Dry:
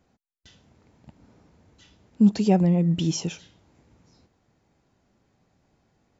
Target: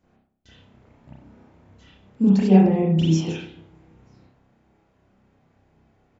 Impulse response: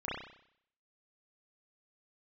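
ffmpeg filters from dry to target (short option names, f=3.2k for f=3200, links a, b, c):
-filter_complex "[0:a]asplit=2[a][b];[b]adelay=149,lowpass=f=960:p=1,volume=-12.5dB,asplit=2[c][d];[d]adelay=149,lowpass=f=960:p=1,volume=0.39,asplit=2[e][f];[f]adelay=149,lowpass=f=960:p=1,volume=0.39,asplit=2[g][h];[h]adelay=149,lowpass=f=960:p=1,volume=0.39[i];[a][c][e][g][i]amix=inputs=5:normalize=0[j];[1:a]atrim=start_sample=2205,afade=t=out:st=0.18:d=0.01,atrim=end_sample=8379[k];[j][k]afir=irnorm=-1:irlink=0"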